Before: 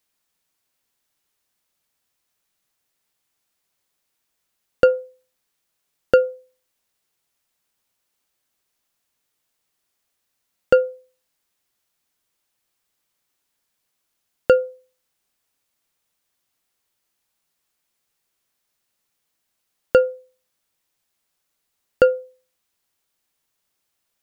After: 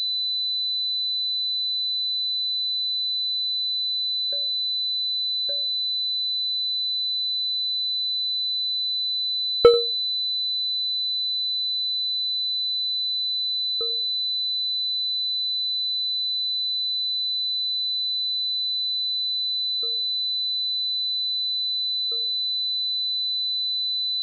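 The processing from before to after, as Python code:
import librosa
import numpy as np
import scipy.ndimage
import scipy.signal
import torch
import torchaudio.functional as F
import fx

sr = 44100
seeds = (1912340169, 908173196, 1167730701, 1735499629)

p1 = fx.doppler_pass(x, sr, speed_mps=36, closest_m=7.3, pass_at_s=9.45)
p2 = p1 + 0.48 * np.pad(p1, (int(2.2 * sr / 1000.0), 0))[:len(p1)]
p3 = p2 + fx.echo_single(p2, sr, ms=89, db=-18.0, dry=0)
p4 = fx.pwm(p3, sr, carrier_hz=4000.0)
y = p4 * 10.0 ** (1.0 / 20.0)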